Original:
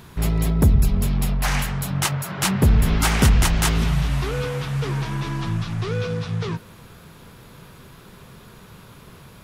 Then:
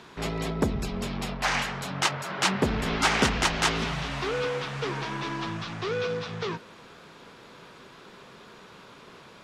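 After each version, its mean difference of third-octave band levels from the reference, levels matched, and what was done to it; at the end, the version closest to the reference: 5.5 dB: three-band isolator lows -18 dB, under 230 Hz, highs -23 dB, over 7.1 kHz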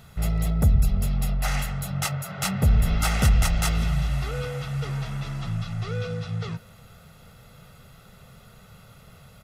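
2.0 dB: comb 1.5 ms, depth 73%; trim -7 dB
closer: second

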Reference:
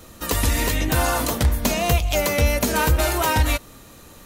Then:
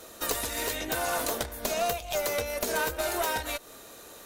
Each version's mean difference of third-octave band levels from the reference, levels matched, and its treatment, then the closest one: 4.5 dB: compression, threshold -24 dBFS, peak gain reduction 11 dB; tone controls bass -13 dB, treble +3 dB; small resonant body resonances 430/650/1500/3700 Hz, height 6 dB, ringing for 20 ms; valve stage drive 18 dB, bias 0.6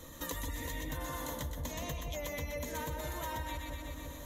6.0 dB: spectral gate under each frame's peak -30 dB strong; rippled EQ curve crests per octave 1.1, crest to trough 9 dB; two-band feedback delay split 870 Hz, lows 169 ms, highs 124 ms, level -4.5 dB; compression 5:1, threshold -31 dBFS, peak gain reduction 17 dB; trim -7 dB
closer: first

